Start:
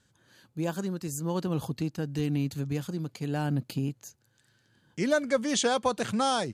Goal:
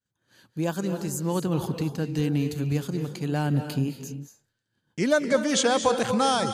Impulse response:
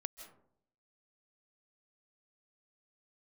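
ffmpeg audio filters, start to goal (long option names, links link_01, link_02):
-filter_complex "[0:a]agate=range=-33dB:threshold=-55dB:ratio=3:detection=peak[link_01];[1:a]atrim=start_sample=2205,afade=type=out:start_time=0.31:duration=0.01,atrim=end_sample=14112,asetrate=31752,aresample=44100[link_02];[link_01][link_02]afir=irnorm=-1:irlink=0,volume=5dB"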